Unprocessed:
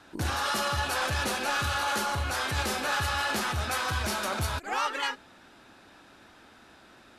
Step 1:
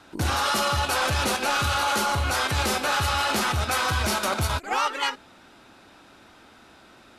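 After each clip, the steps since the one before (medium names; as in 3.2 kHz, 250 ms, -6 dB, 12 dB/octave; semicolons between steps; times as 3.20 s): band-stop 1.7 kHz, Q 13; in parallel at +1.5 dB: level held to a coarse grid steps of 16 dB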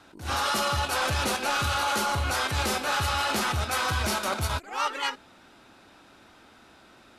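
attacks held to a fixed rise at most 140 dB/s; trim -2.5 dB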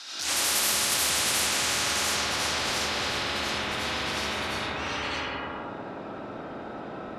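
band-pass sweep 5.1 kHz -> 280 Hz, 0.76–3.31 s; algorithmic reverb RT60 1.3 s, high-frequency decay 0.65×, pre-delay 45 ms, DRR -8.5 dB; spectrum-flattening compressor 10:1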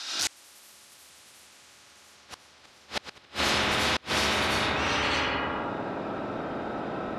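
inverted gate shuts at -18 dBFS, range -32 dB; trim +4.5 dB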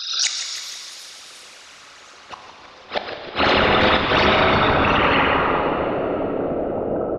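resonances exaggerated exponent 3; on a send: frequency-shifting echo 157 ms, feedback 60%, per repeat -110 Hz, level -10.5 dB; on the sum: plate-style reverb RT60 3.1 s, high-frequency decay 0.95×, DRR 4.5 dB; trim +8.5 dB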